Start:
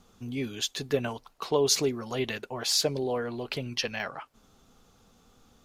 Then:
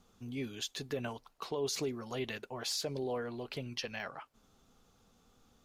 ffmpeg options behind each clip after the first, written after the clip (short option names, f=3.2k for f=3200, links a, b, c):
-af "alimiter=limit=-20dB:level=0:latency=1:release=52,volume=-6.5dB"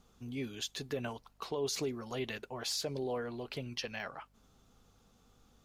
-af "aeval=exprs='val(0)+0.000355*(sin(2*PI*50*n/s)+sin(2*PI*2*50*n/s)/2+sin(2*PI*3*50*n/s)/3+sin(2*PI*4*50*n/s)/4+sin(2*PI*5*50*n/s)/5)':c=same"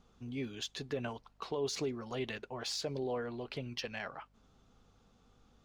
-af "adynamicsmooth=sensitivity=4:basefreq=6.5k"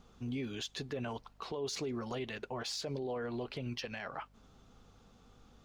-af "alimiter=level_in=11dB:limit=-24dB:level=0:latency=1:release=85,volume=-11dB,volume=5dB"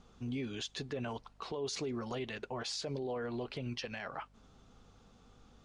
-af "aresample=22050,aresample=44100"